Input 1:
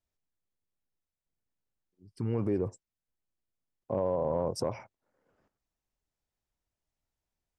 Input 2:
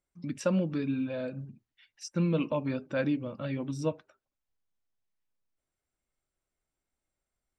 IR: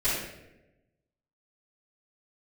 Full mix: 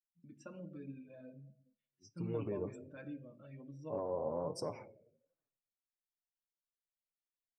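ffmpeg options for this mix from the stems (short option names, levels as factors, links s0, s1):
-filter_complex "[0:a]lowshelf=f=83:g=-7.5,volume=0.596,asplit=2[s0][s1];[s1]volume=0.075[s2];[1:a]volume=0.141,asplit=2[s3][s4];[s4]volume=0.133[s5];[2:a]atrim=start_sample=2205[s6];[s2][s5]amix=inputs=2:normalize=0[s7];[s7][s6]afir=irnorm=-1:irlink=0[s8];[s0][s3][s8]amix=inputs=3:normalize=0,afftdn=nr=17:nf=-58,flanger=delay=5.8:depth=3.8:regen=-13:speed=1.3:shape=triangular"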